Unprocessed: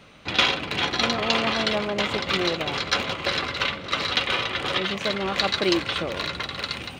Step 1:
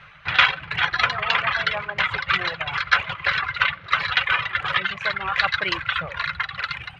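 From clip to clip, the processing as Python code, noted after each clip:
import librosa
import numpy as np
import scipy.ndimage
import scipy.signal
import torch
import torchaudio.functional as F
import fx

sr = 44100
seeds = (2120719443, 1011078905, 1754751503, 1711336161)

y = fx.dereverb_blind(x, sr, rt60_s=1.6)
y = fx.curve_eq(y, sr, hz=(160.0, 230.0, 1600.0, 11000.0), db=(0, -23, 9, -22))
y = F.gain(torch.from_numpy(y), 3.0).numpy()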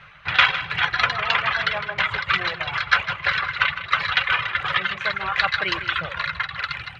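y = fx.echo_feedback(x, sr, ms=157, feedback_pct=33, wet_db=-12.0)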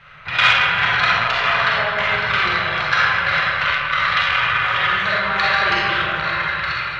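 y = fx.rev_freeverb(x, sr, rt60_s=2.6, hf_ratio=0.4, predelay_ms=5, drr_db=-8.0)
y = fx.transformer_sat(y, sr, knee_hz=1200.0)
y = F.gain(torch.from_numpy(y), -2.0).numpy()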